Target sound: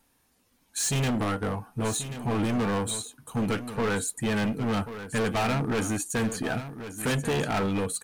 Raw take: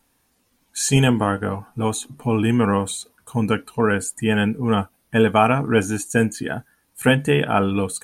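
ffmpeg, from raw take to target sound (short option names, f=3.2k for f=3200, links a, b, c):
-af "volume=21.5dB,asoftclip=hard,volume=-21.5dB,aecho=1:1:1086:0.266,volume=-2.5dB"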